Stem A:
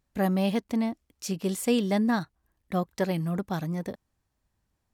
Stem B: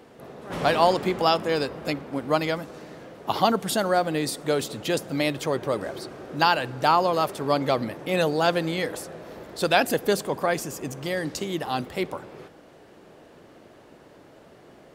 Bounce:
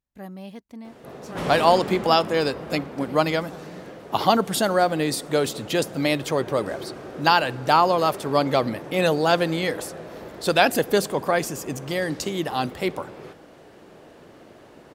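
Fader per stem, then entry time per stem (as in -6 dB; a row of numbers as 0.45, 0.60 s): -13.0, +2.5 dB; 0.00, 0.85 s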